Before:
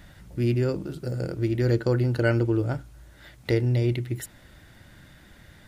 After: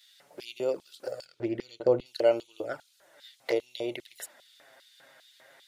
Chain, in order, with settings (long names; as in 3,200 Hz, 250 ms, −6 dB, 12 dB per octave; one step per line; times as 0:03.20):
flanger swept by the level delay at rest 8.8 ms, full sweep at −20 dBFS
auto-filter high-pass square 2.5 Hz 610–3,700 Hz
0:01.25–0:02.06: RIAA equalisation playback